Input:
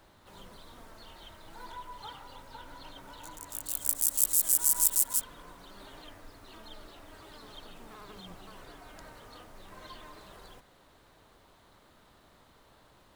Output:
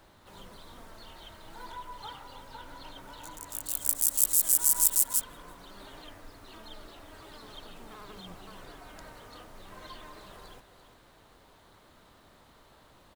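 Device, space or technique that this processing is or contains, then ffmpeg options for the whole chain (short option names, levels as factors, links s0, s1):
ducked delay: -filter_complex "[0:a]asplit=3[s0][s1][s2];[s1]adelay=340,volume=0.398[s3];[s2]apad=whole_len=594982[s4];[s3][s4]sidechaincompress=threshold=0.00316:ratio=8:attack=16:release=1260[s5];[s0][s5]amix=inputs=2:normalize=0,volume=1.19"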